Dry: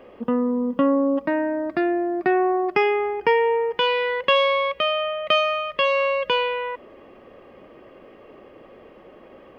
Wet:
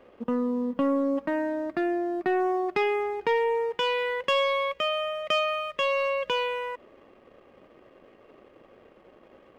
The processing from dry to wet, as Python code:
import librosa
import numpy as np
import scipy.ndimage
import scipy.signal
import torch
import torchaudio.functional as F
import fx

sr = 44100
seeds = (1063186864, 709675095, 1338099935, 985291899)

y = fx.leveller(x, sr, passes=1)
y = F.gain(torch.from_numpy(y), -8.5).numpy()